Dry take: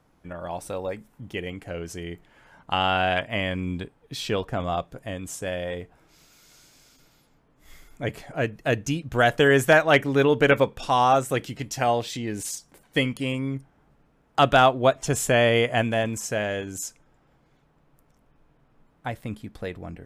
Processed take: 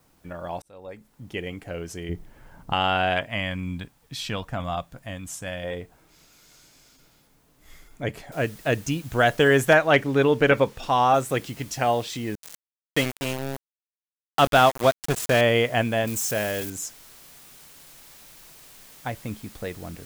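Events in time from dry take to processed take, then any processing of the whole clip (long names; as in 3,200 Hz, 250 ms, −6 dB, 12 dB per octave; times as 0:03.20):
0:00.62–0:01.36: fade in
0:02.09–0:02.73: spectral tilt −3 dB per octave
0:03.29–0:05.64: parametric band 410 Hz −12 dB
0:08.32: noise floor change −67 dB −49 dB
0:09.74–0:11.14: high-shelf EQ 6,900 Hz −9 dB
0:12.35–0:15.41: centre clipping without the shift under −24 dBFS
0:16.07–0:16.70: spike at every zero crossing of −25 dBFS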